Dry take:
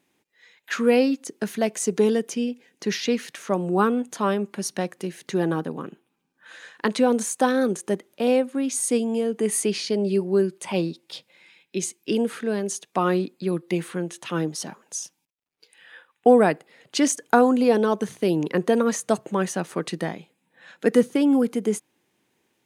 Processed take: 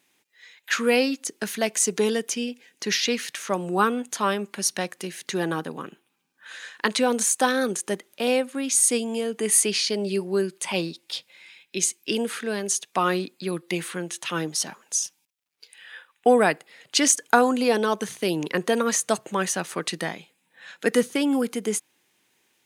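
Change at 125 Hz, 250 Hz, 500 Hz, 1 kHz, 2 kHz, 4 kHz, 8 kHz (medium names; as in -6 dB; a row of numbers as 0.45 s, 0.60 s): -4.5 dB, -4.0 dB, -2.5 dB, +0.5 dB, +4.0 dB, +6.0 dB, +7.0 dB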